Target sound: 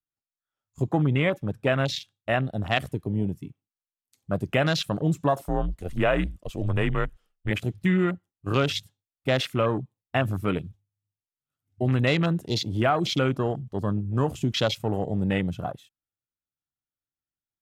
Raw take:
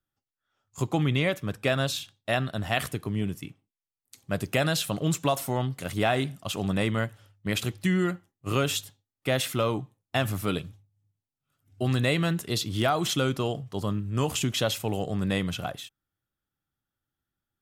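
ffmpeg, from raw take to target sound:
-filter_complex "[0:a]afwtdn=0.0224,asettb=1/sr,asplit=3[a][b][c];[a]atrim=end=5.444[d];[b]atrim=start=5.44:end=7.51,asetpts=PTS-STARTPTS,afade=t=in:d=0.004:c=qsin,afade=t=out:st=2.066:d=0.004:c=qsin,afreqshift=-86[e];[c]atrim=start=7.506[f];[d][e]acrossfade=d=0.004:c1=hsin:c2=qsin[g];[g][f]acrossfade=d=0.004:c1=qsin:c2=hsin,volume=2.5dB"

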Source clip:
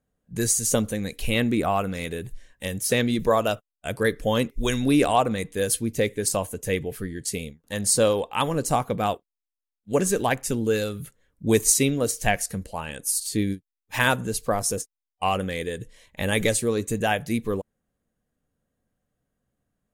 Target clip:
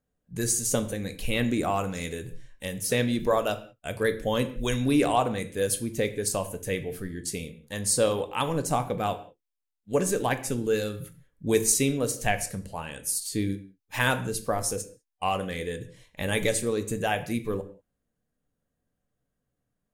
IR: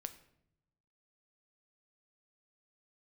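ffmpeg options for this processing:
-filter_complex "[0:a]asettb=1/sr,asplit=3[a][b][c];[a]atrim=end=1.444[d];[b]atrim=start=1.44:end=2.24,asetpts=PTS-STARTPTS,afade=t=in:d=0.004:c=qsin,afade=t=out:st=0.796:d=0.004:c=qsin,equalizer=f=6.8k:w=2:g=10.5[e];[c]atrim=start=2.236[f];[d][e]acrossfade=d=0.004:c1=hsin:c2=qsin[g];[g][f]acrossfade=d=0.004:c1=qsin:c2=hsin[h];[1:a]atrim=start_sample=2205,afade=t=out:st=0.25:d=0.01,atrim=end_sample=11466[i];[h][i]afir=irnorm=-1:irlink=0"

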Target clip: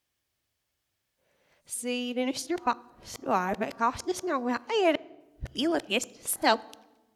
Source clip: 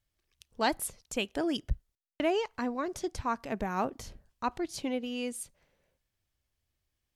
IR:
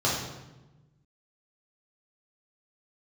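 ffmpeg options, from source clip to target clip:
-filter_complex "[0:a]areverse,highpass=f=260:p=1,asplit=2[a][b];[1:a]atrim=start_sample=2205[c];[b][c]afir=irnorm=-1:irlink=0,volume=-32.5dB[d];[a][d]amix=inputs=2:normalize=0,volume=5.5dB"

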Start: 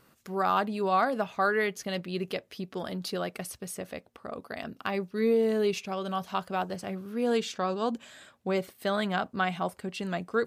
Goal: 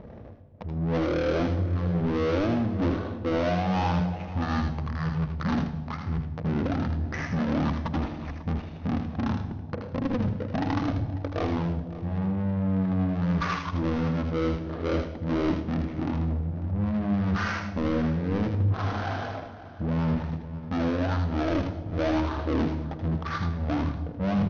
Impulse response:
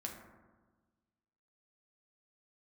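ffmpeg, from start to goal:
-filter_complex "[0:a]lowshelf=f=410:g=12,bandreject=f=60:t=h:w=6,bandreject=f=120:t=h:w=6,bandreject=f=180:t=h:w=6,bandreject=f=240:t=h:w=6,bandreject=f=300:t=h:w=6,bandreject=f=360:t=h:w=6,bandreject=f=420:t=h:w=6,areverse,acompressor=threshold=-35dB:ratio=12,areverse,crystalizer=i=2.5:c=0,asplit=2[a][b];[b]highpass=f=720:p=1,volume=26dB,asoftclip=type=tanh:threshold=-19.5dB[c];[a][c]amix=inputs=2:normalize=0,lowpass=f=3.7k:p=1,volume=-6dB,adynamicsmooth=sensitivity=6.5:basefreq=530,asplit=2[d][e];[e]adelay=233.2,volume=-14dB,highshelf=f=4k:g=-5.25[f];[d][f]amix=inputs=2:normalize=0,asplit=2[g][h];[1:a]atrim=start_sample=2205,highshelf=f=3.8k:g=7.5,adelay=34[i];[h][i]afir=irnorm=-1:irlink=0,volume=-6.5dB[j];[g][j]amix=inputs=2:normalize=0,aresample=32000,aresample=44100,asetrate=18846,aresample=44100,volume=2dB"

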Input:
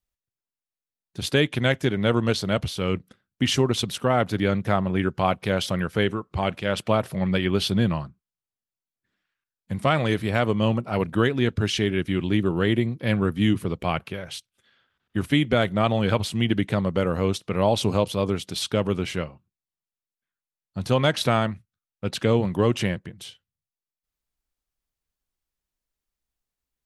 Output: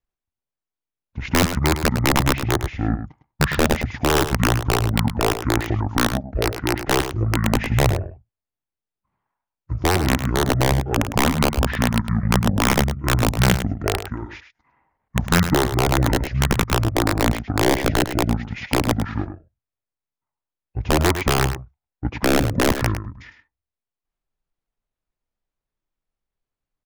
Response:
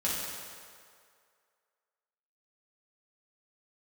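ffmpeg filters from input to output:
-filter_complex "[0:a]asetrate=26222,aresample=44100,atempo=1.68179,lowpass=f=1.1k:p=1,aeval=exprs='(mod(4.22*val(0)+1,2)-1)/4.22':c=same,asplit=2[a][b];[b]aecho=0:1:105:0.316[c];[a][c]amix=inputs=2:normalize=0,volume=4dB"

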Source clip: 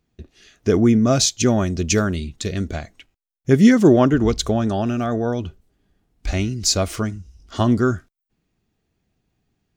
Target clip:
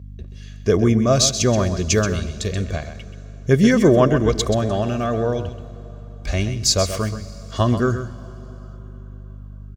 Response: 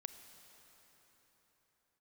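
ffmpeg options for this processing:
-filter_complex "[0:a]asplit=2[a][b];[1:a]atrim=start_sample=2205,adelay=130[c];[b][c]afir=irnorm=-1:irlink=0,volume=-5.5dB[d];[a][d]amix=inputs=2:normalize=0,aeval=exprs='val(0)+0.0178*(sin(2*PI*50*n/s)+sin(2*PI*2*50*n/s)/2+sin(2*PI*3*50*n/s)/3+sin(2*PI*4*50*n/s)/4+sin(2*PI*5*50*n/s)/5)':c=same,highpass=49,aecho=1:1:1.8:0.44"

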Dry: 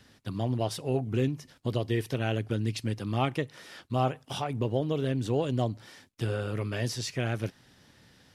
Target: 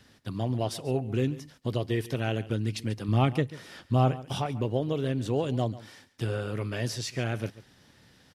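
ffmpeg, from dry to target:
-filter_complex "[0:a]asettb=1/sr,asplit=3[a][b][c];[a]atrim=end=3.084[d];[b]atrim=start=3.08:end=4.46,asetpts=PTS-STARTPTS,afade=t=in:d=0.004:c=qsin,afade=t=out:st=1.376:d=0.004:c=qsin,lowshelf=f=290:g=8[e];[c]atrim=start=4.456[f];[d][e]acrossfade=d=0.004:c1=hsin:c2=qsin[g];[g][f]acrossfade=d=0.004:c1=qsin:c2=hsin,aecho=1:1:140:0.133"

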